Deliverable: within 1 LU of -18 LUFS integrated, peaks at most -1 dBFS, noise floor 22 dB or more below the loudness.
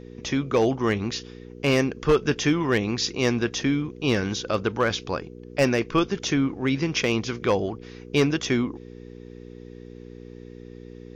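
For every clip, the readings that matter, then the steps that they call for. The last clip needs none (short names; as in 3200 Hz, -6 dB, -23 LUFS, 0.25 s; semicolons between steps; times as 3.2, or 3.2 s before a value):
clipped 0.3%; flat tops at -12.5 dBFS; hum 60 Hz; harmonics up to 480 Hz; hum level -39 dBFS; loudness -24.5 LUFS; peak -12.5 dBFS; loudness target -18.0 LUFS
-> clip repair -12.5 dBFS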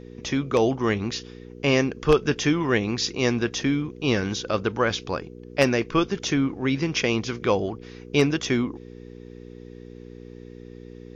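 clipped 0.0%; hum 60 Hz; harmonics up to 480 Hz; hum level -39 dBFS
-> de-hum 60 Hz, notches 8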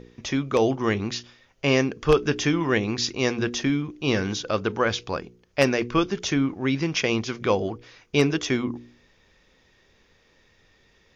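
hum none; loudness -24.5 LUFS; peak -3.5 dBFS; loudness target -18.0 LUFS
-> gain +6.5 dB; limiter -1 dBFS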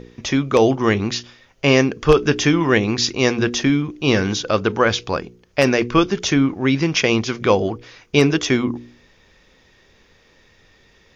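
loudness -18.5 LUFS; peak -1.0 dBFS; noise floor -55 dBFS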